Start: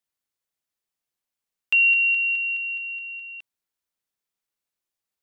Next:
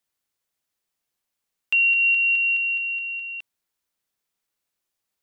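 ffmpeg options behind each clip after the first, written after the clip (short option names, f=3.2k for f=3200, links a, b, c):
-af "alimiter=limit=-20dB:level=0:latency=1:release=338,volume=5dB"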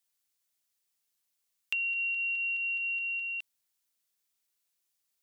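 -af "acompressor=threshold=-28dB:ratio=10,highshelf=f=2.5k:g=11.5,volume=-8.5dB"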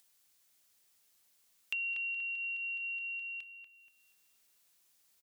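-filter_complex "[0:a]acompressor=mode=upward:threshold=-52dB:ratio=2.5,asplit=2[a][b];[b]adelay=239,lowpass=f=1.9k:p=1,volume=-5dB,asplit=2[c][d];[d]adelay=239,lowpass=f=1.9k:p=1,volume=0.55,asplit=2[e][f];[f]adelay=239,lowpass=f=1.9k:p=1,volume=0.55,asplit=2[g][h];[h]adelay=239,lowpass=f=1.9k:p=1,volume=0.55,asplit=2[i][j];[j]adelay=239,lowpass=f=1.9k:p=1,volume=0.55,asplit=2[k][l];[l]adelay=239,lowpass=f=1.9k:p=1,volume=0.55,asplit=2[m][n];[n]adelay=239,lowpass=f=1.9k:p=1,volume=0.55[o];[a][c][e][g][i][k][m][o]amix=inputs=8:normalize=0,volume=-4.5dB"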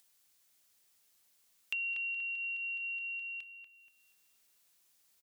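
-af anull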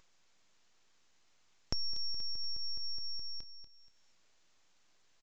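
-af "aeval=exprs='abs(val(0))':c=same,aresample=16000,aresample=44100,volume=4dB"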